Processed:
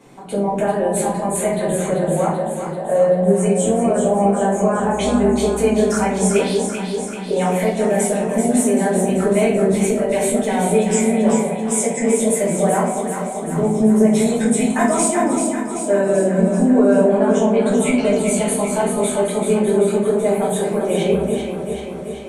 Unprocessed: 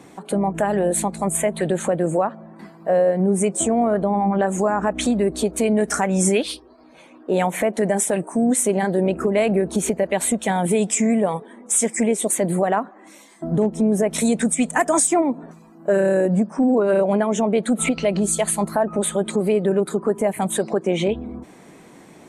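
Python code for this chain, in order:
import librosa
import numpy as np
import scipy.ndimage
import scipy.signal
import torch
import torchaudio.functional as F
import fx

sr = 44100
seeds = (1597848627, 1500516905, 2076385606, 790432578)

p1 = x + fx.echo_alternate(x, sr, ms=193, hz=820.0, feedback_pct=80, wet_db=-4.0, dry=0)
p2 = fx.room_shoebox(p1, sr, seeds[0], volume_m3=74.0, walls='mixed', distance_m=1.6)
y = p2 * librosa.db_to_amplitude(-7.5)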